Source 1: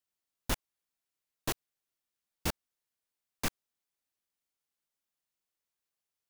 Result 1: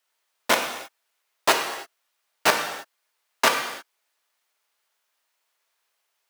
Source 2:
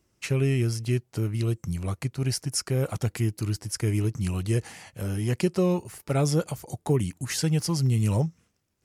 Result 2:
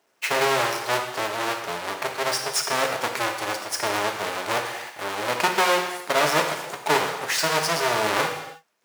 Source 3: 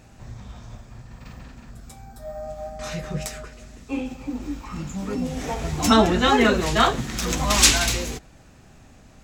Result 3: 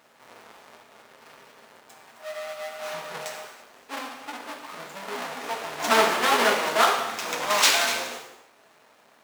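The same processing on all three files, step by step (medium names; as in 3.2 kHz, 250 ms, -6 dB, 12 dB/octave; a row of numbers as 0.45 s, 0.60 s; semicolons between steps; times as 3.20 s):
square wave that keeps the level; high-pass 680 Hz 12 dB/octave; treble shelf 3.6 kHz -6.5 dB; gated-style reverb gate 350 ms falling, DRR 2.5 dB; loudspeaker Doppler distortion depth 0.15 ms; normalise loudness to -24 LUFS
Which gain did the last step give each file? +15.0 dB, +6.0 dB, -3.5 dB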